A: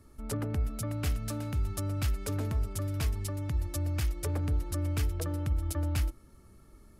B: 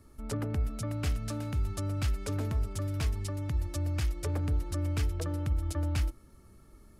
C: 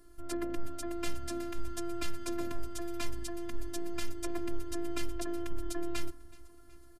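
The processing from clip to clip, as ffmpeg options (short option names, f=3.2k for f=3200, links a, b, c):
-filter_complex "[0:a]acrossover=split=9400[a][b];[b]acompressor=threshold=-54dB:ratio=4:attack=1:release=60[c];[a][c]amix=inputs=2:normalize=0"
-filter_complex "[0:a]asplit=5[a][b][c][d][e];[b]adelay=373,afreqshift=-73,volume=-22dB[f];[c]adelay=746,afreqshift=-146,volume=-27.2dB[g];[d]adelay=1119,afreqshift=-219,volume=-32.4dB[h];[e]adelay=1492,afreqshift=-292,volume=-37.6dB[i];[a][f][g][h][i]amix=inputs=5:normalize=0,afftfilt=real='hypot(re,im)*cos(PI*b)':imag='0':win_size=512:overlap=0.75,volume=3.5dB"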